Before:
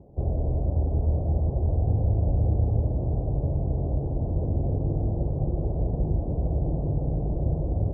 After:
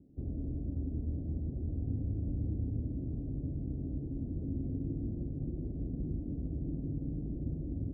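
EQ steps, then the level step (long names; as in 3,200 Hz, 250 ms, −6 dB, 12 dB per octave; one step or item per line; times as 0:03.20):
formant resonators in series i
0.0 dB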